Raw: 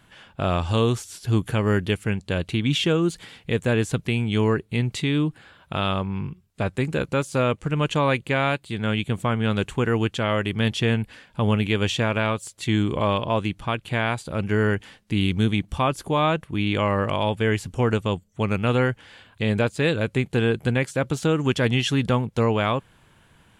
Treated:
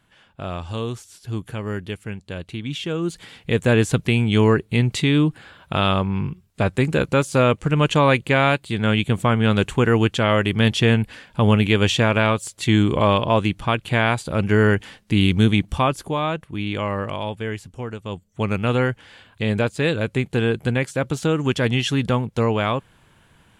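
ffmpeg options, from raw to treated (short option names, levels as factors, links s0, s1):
-af "volume=7.08,afade=t=in:st=2.85:d=0.88:silence=0.266073,afade=t=out:st=15.63:d=0.57:silence=0.421697,afade=t=out:st=16.94:d=1.05:silence=0.375837,afade=t=in:st=17.99:d=0.41:silence=0.251189"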